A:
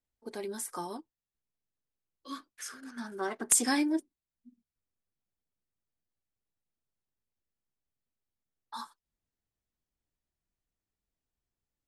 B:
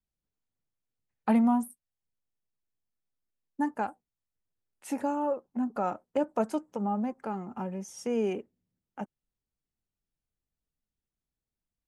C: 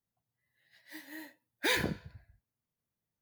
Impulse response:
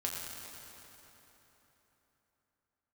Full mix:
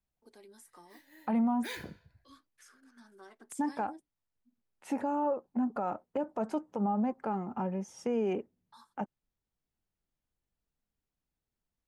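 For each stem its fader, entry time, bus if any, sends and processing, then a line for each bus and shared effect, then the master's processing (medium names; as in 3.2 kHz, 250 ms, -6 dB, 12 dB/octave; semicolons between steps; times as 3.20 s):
-18.0 dB, 0.00 s, no send, three bands compressed up and down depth 40%
+1.5 dB, 0.00 s, no send, low-pass 2.6 kHz 6 dB/octave; peaking EQ 840 Hz +2.5 dB
-11.5 dB, 0.00 s, no send, none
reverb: none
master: peak limiter -23 dBFS, peak gain reduction 10.5 dB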